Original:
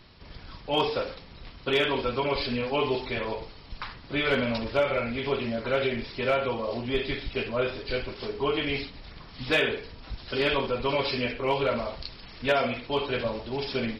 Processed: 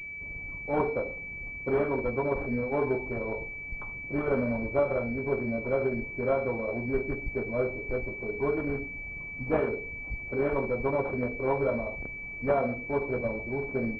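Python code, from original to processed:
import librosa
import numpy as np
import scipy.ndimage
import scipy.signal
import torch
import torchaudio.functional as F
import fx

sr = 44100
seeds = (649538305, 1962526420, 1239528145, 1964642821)

y = fx.wiener(x, sr, points=25)
y = fx.pwm(y, sr, carrier_hz=2300.0)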